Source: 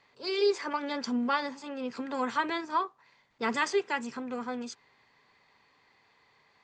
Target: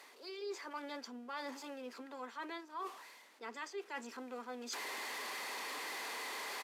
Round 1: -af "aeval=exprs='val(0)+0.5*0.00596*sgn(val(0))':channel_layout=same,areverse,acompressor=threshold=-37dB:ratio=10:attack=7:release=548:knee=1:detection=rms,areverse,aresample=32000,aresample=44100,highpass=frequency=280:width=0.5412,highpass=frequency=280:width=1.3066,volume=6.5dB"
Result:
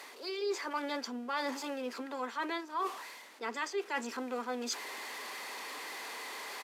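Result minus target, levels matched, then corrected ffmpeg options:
downward compressor: peak gain reduction −8.5 dB
-af "aeval=exprs='val(0)+0.5*0.00596*sgn(val(0))':channel_layout=same,areverse,acompressor=threshold=-46.5dB:ratio=10:attack=7:release=548:knee=1:detection=rms,areverse,aresample=32000,aresample=44100,highpass=frequency=280:width=0.5412,highpass=frequency=280:width=1.3066,volume=6.5dB"

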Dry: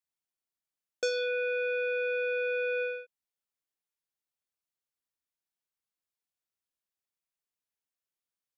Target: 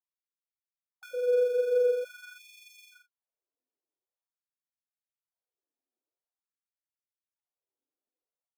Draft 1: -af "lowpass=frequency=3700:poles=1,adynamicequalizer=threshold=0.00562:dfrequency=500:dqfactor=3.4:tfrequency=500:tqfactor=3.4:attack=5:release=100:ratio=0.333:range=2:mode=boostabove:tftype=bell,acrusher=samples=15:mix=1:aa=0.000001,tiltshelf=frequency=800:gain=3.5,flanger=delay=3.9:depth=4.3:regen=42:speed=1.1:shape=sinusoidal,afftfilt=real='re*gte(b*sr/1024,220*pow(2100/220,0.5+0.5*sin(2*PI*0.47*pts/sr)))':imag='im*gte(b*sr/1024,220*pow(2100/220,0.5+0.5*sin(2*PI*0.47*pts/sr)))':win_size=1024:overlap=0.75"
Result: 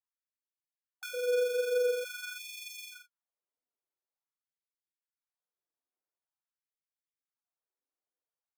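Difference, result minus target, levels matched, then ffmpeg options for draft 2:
1,000 Hz band +10.5 dB
-af "lowpass=frequency=3700:poles=1,adynamicequalizer=threshold=0.00562:dfrequency=500:dqfactor=3.4:tfrequency=500:tqfactor=3.4:attack=5:release=100:ratio=0.333:range=2:mode=boostabove:tftype=bell,acrusher=samples=15:mix=1:aa=0.000001,tiltshelf=frequency=800:gain=15,flanger=delay=3.9:depth=4.3:regen=42:speed=1.1:shape=sinusoidal,afftfilt=real='re*gte(b*sr/1024,220*pow(2100/220,0.5+0.5*sin(2*PI*0.47*pts/sr)))':imag='im*gte(b*sr/1024,220*pow(2100/220,0.5+0.5*sin(2*PI*0.47*pts/sr)))':win_size=1024:overlap=0.75"

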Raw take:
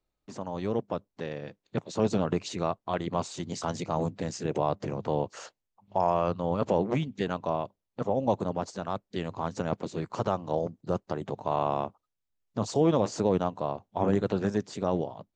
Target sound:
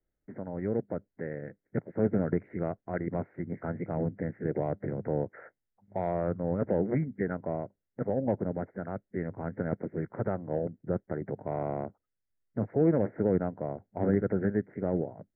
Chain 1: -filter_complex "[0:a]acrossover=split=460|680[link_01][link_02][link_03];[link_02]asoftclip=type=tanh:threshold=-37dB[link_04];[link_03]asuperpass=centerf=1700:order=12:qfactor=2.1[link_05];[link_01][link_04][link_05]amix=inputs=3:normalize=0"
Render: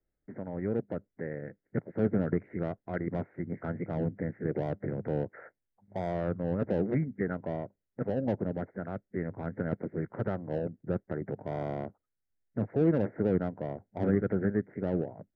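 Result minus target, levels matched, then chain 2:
soft clipping: distortion +12 dB
-filter_complex "[0:a]acrossover=split=460|680[link_01][link_02][link_03];[link_02]asoftclip=type=tanh:threshold=-26dB[link_04];[link_03]asuperpass=centerf=1700:order=12:qfactor=2.1[link_05];[link_01][link_04][link_05]amix=inputs=3:normalize=0"

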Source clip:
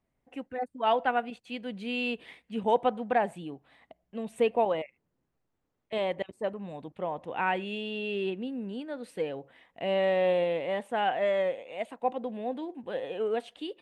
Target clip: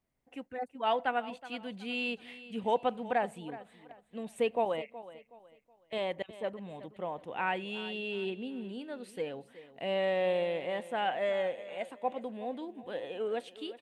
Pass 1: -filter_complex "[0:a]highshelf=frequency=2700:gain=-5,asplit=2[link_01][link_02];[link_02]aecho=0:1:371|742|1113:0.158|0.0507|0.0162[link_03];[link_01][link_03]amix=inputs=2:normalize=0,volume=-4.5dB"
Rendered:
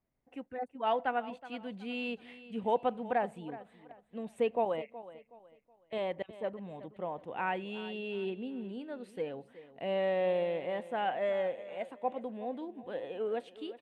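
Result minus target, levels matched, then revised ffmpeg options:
4,000 Hz band −4.5 dB
-filter_complex "[0:a]highshelf=frequency=2700:gain=5,asplit=2[link_01][link_02];[link_02]aecho=0:1:371|742|1113:0.158|0.0507|0.0162[link_03];[link_01][link_03]amix=inputs=2:normalize=0,volume=-4.5dB"

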